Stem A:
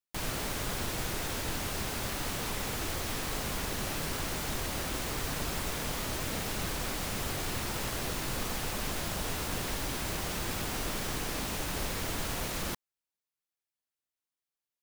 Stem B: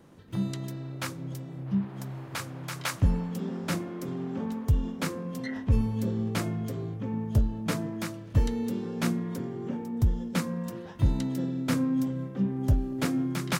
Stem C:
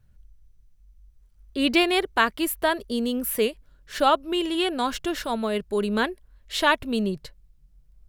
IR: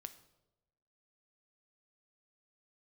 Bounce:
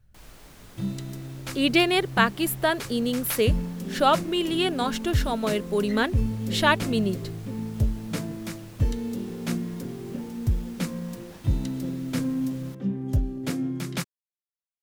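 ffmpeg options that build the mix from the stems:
-filter_complex "[0:a]volume=-16dB[link_01];[1:a]equalizer=frequency=1100:width=0.96:gain=-6,adelay=450,volume=0dB[link_02];[2:a]bandreject=frequency=1000:width=15,volume=0dB[link_03];[link_01][link_02][link_03]amix=inputs=3:normalize=0"

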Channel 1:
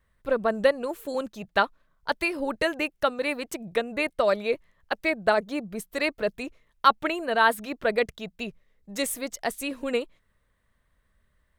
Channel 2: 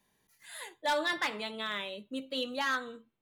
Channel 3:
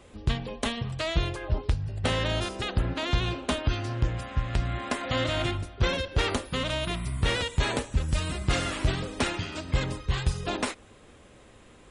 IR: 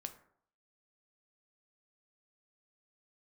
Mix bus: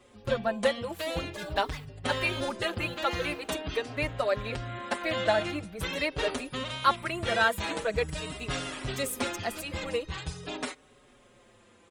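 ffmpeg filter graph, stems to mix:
-filter_complex "[0:a]equalizer=frequency=340:width_type=o:width=1.8:gain=-3.5,volume=-1dB,asplit=2[link_01][link_02];[1:a]highshelf=frequency=3800:gain=10,acrusher=bits=7:mix=0:aa=0.000001,adelay=500,volume=-10.5dB[link_03];[2:a]highpass=frequency=170:poles=1,volume=-1.5dB[link_04];[link_02]apad=whole_len=163874[link_05];[link_03][link_05]sidechaingate=range=-33dB:threshold=-48dB:ratio=16:detection=peak[link_06];[link_01][link_06][link_04]amix=inputs=3:normalize=0,asplit=2[link_07][link_08];[link_08]adelay=5.1,afreqshift=-0.45[link_09];[link_07][link_09]amix=inputs=2:normalize=1"

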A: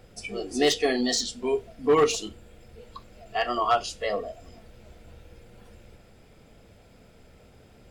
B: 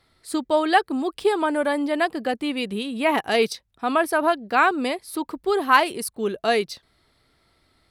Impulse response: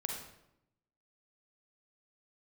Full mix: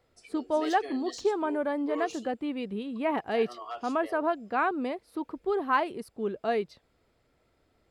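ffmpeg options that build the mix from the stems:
-filter_complex "[0:a]highpass=frequency=270:width=0.5412,highpass=frequency=270:width=1.3066,volume=-16.5dB[link_01];[1:a]lowpass=frequency=1000:poles=1,volume=-5.5dB[link_02];[link_01][link_02]amix=inputs=2:normalize=0"

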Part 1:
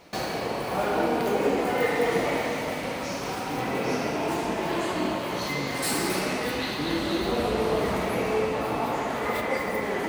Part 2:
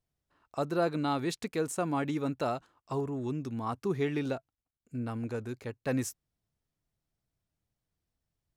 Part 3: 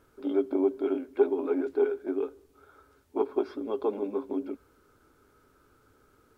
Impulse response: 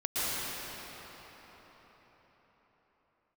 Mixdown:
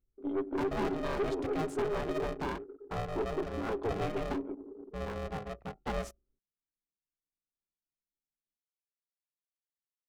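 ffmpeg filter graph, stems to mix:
-filter_complex "[1:a]bandreject=frequency=50:width_type=h:width=6,bandreject=frequency=100:width_type=h:width=6,bandreject=frequency=150:width_type=h:width=6,bandreject=frequency=200:width_type=h:width=6,bandreject=frequency=250:width_type=h:width=6,bandreject=frequency=300:width_type=h:width=6,bandreject=frequency=350:width_type=h:width=6,bandreject=frequency=400:width_type=h:width=6,bandreject=frequency=450:width_type=h:width=6,bandreject=frequency=500:width_type=h:width=6,adynamicequalizer=threshold=0.00708:dfrequency=1000:dqfactor=0.91:tfrequency=1000:tqfactor=0.91:attack=5:release=100:ratio=0.375:range=2:mode=cutabove:tftype=bell,aeval=exprs='val(0)*sgn(sin(2*PI*310*n/s))':channel_layout=same,volume=-0.5dB[link_01];[2:a]volume=-3dB,asplit=2[link_02][link_03];[link_03]volume=-21.5dB[link_04];[3:a]atrim=start_sample=2205[link_05];[link_04][link_05]afir=irnorm=-1:irlink=0[link_06];[link_01][link_02][link_06]amix=inputs=3:normalize=0,anlmdn=0.0631,lowpass=frequency=1800:poles=1,aeval=exprs='(tanh(22.4*val(0)+0.25)-tanh(0.25))/22.4':channel_layout=same"

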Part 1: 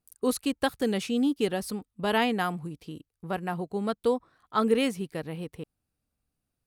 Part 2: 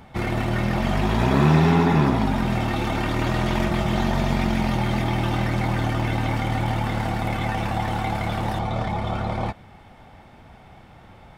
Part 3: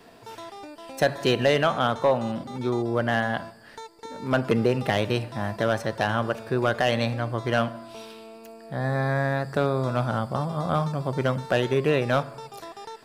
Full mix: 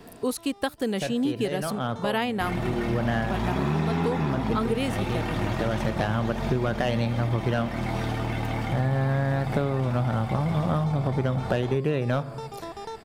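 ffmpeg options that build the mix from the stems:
ffmpeg -i stem1.wav -i stem2.wav -i stem3.wav -filter_complex "[0:a]volume=1dB,asplit=2[link_01][link_02];[1:a]adelay=2250,volume=-5dB[link_03];[2:a]lowshelf=frequency=340:gain=10,volume=0.5dB[link_04];[link_02]apad=whole_len=575120[link_05];[link_04][link_05]sidechaincompress=threshold=-38dB:ratio=4:attack=6.4:release=580[link_06];[link_01][link_03][link_06]amix=inputs=3:normalize=0,acompressor=threshold=-21dB:ratio=6" out.wav

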